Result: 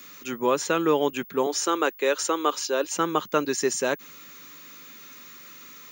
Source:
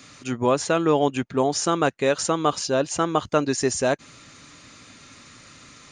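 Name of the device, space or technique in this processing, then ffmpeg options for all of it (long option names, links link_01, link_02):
old television with a line whistle: -filter_complex "[0:a]asettb=1/sr,asplit=3[link_01][link_02][link_03];[link_01]atrim=end=1.464[link_04];[link_02]atrim=start=1.46:end=2.97,asetpts=PTS-STARTPTS,afade=type=in:duration=0.004:curve=qsin,afade=type=out:start_time=1.506:duration=0.004:curve=qsin,highpass=frequency=280:width=0.5412,highpass=frequency=280:width=1.3066[link_05];[link_03]atrim=start=2.966[link_06];[link_04][link_05]acrossfade=duration=0.004:curve1=hsin:curve2=qsin[link_07];[link_07][link_06]acrossfade=duration=0.004:curve1=qsin:curve2=hsin,highpass=frequency=190:width=0.5412,highpass=frequency=190:width=1.3066,equalizer=frequency=260:width_type=q:width=4:gain=-6,equalizer=frequency=690:width_type=q:width=4:gain=-10,equalizer=frequency=4700:width_type=q:width=4:gain=-4,lowpass=frequency=8600:width=0.5412,lowpass=frequency=8600:width=1.3066,aeval=exprs='val(0)+0.00562*sin(2*PI*15625*n/s)':channel_layout=same"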